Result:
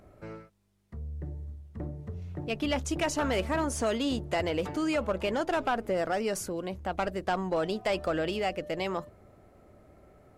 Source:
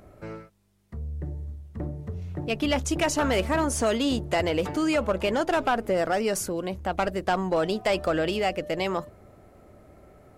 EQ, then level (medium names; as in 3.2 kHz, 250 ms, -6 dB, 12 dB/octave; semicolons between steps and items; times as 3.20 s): treble shelf 9.2 kHz -4 dB; -4.5 dB